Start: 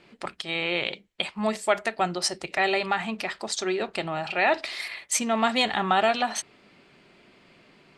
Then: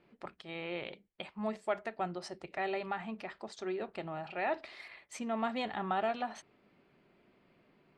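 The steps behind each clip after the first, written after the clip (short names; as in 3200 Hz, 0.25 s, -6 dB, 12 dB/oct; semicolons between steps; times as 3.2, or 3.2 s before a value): LPF 1200 Hz 6 dB/oct; gain -9 dB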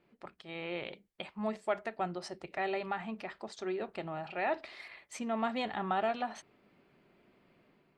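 AGC gain up to 4.5 dB; gain -3.5 dB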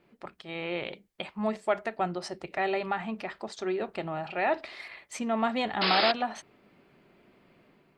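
painted sound noise, 5.81–6.12, 270–5200 Hz -32 dBFS; gain +5.5 dB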